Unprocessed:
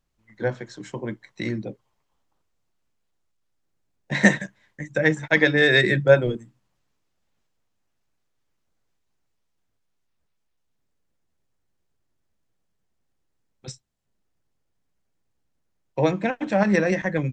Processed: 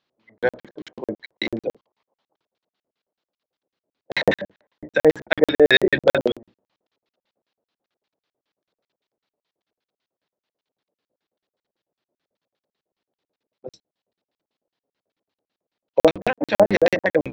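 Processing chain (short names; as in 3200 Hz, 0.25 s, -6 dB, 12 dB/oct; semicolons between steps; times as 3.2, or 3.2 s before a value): octaver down 1 oct, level -1 dB; LFO low-pass square 5.1 Hz 580–4000 Hz; BPF 310–5700 Hz; maximiser +5.5 dB; crackling interface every 0.11 s, samples 2048, zero, from 0.38; gain -1 dB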